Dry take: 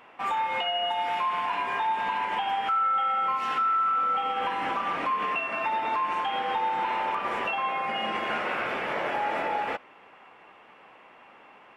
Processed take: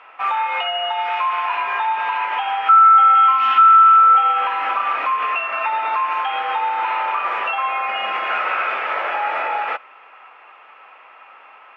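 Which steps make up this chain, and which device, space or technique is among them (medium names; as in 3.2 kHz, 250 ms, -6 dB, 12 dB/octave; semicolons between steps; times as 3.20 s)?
3.15–3.97 s: graphic EQ with 31 bands 160 Hz +10 dB, 250 Hz +11 dB, 500 Hz -12 dB, 3.15 kHz +9 dB; tin-can telephone (band-pass 690–3100 Hz; small resonant body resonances 1.3/2.5 kHz, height 10 dB, ringing for 35 ms); trim +7.5 dB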